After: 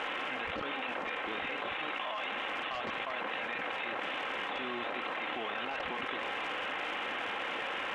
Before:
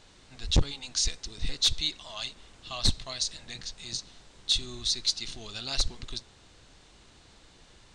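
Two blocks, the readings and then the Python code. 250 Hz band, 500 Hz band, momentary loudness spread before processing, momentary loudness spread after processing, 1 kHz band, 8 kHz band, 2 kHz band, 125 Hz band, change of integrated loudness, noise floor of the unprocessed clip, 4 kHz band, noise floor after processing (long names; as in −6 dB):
−2.0 dB, +6.5 dB, 14 LU, 1 LU, +12.5 dB, below −25 dB, +11.0 dB, −21.0 dB, −5.5 dB, −57 dBFS, −10.5 dB, −38 dBFS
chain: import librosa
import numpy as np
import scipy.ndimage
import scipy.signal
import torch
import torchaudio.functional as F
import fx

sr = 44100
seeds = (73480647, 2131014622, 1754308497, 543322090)

p1 = fx.cvsd(x, sr, bps=16000)
p2 = scipy.signal.sosfilt(scipy.signal.butter(2, 510.0, 'highpass', fs=sr, output='sos'), p1)
p3 = p2 + 0.34 * np.pad(p2, (int(3.8 * sr / 1000.0), 0))[:len(p2)]
p4 = fx.quant_float(p3, sr, bits=2)
p5 = p3 + (p4 * 10.0 ** (-8.0 / 20.0))
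p6 = np.clip(10.0 ** (33.5 / 20.0) * p5, -1.0, 1.0) / 10.0 ** (33.5 / 20.0)
p7 = fx.dmg_crackle(p6, sr, seeds[0], per_s=330.0, level_db=-57.0)
p8 = fx.air_absorb(p7, sr, metres=85.0)
y = fx.env_flatten(p8, sr, amount_pct=100)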